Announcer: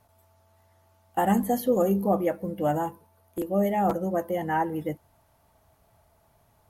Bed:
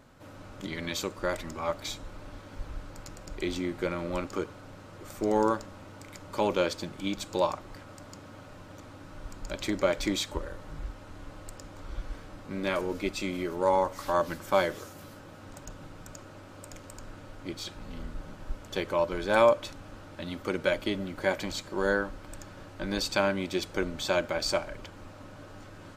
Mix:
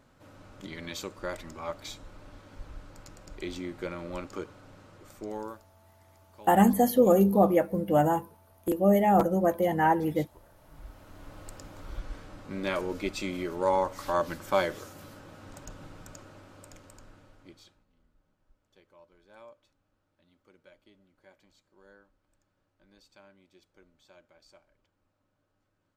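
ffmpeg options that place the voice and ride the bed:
-filter_complex "[0:a]adelay=5300,volume=2.5dB[a];[1:a]volume=16.5dB,afade=t=out:st=4.83:d=0.84:silence=0.133352,afade=t=in:st=10.5:d=0.97:silence=0.0841395,afade=t=out:st=15.9:d=1.95:silence=0.0334965[b];[a][b]amix=inputs=2:normalize=0"

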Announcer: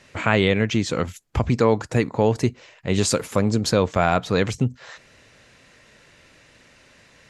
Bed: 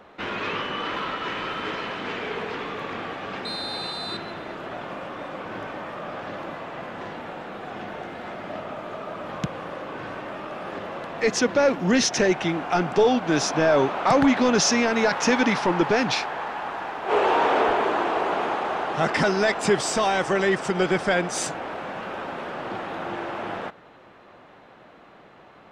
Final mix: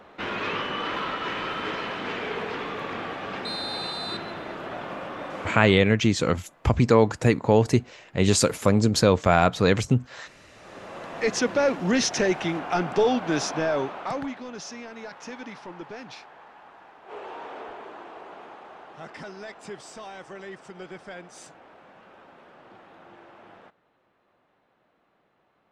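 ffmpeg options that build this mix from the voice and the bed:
-filter_complex "[0:a]adelay=5300,volume=0.5dB[a];[1:a]volume=20.5dB,afade=t=out:st=5.45:d=0.44:silence=0.0707946,afade=t=in:st=10.53:d=0.64:silence=0.0891251,afade=t=out:st=13.24:d=1.16:silence=0.158489[b];[a][b]amix=inputs=2:normalize=0"

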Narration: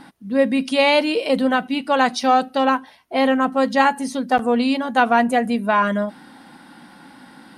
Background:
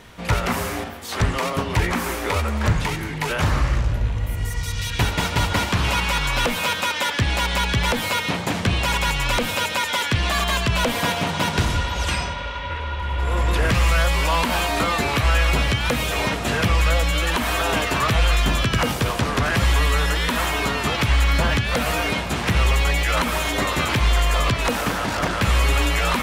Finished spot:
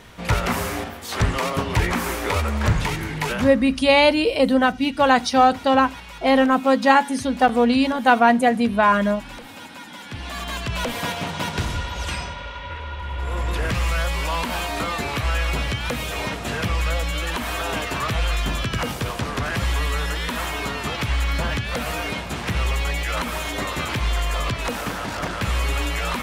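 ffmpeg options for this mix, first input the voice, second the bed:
-filter_complex "[0:a]adelay=3100,volume=1dB[a];[1:a]volume=13.5dB,afade=t=out:st=3.28:d=0.25:silence=0.125893,afade=t=in:st=9.98:d=0.92:silence=0.211349[b];[a][b]amix=inputs=2:normalize=0"

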